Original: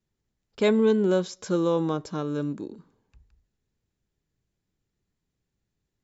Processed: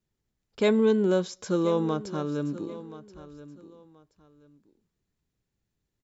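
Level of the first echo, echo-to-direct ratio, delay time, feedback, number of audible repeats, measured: -16.0 dB, -16.0 dB, 1.028 s, 25%, 2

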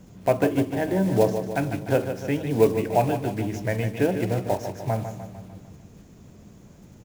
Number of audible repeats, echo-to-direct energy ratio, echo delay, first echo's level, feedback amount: 5, -7.5 dB, 0.15 s, -9.0 dB, 54%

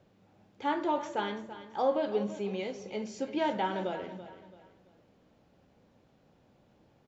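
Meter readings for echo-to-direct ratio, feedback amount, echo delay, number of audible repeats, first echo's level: -13.0 dB, 35%, 0.334 s, 3, -13.5 dB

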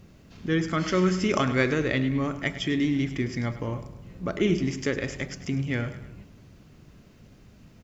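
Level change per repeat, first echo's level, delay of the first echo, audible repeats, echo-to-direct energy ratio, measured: -6.0 dB, -13.5 dB, 0.103 s, 3, -12.5 dB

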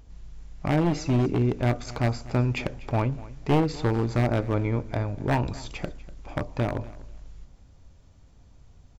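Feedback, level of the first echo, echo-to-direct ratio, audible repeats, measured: 21%, -19.0 dB, -19.0 dB, 2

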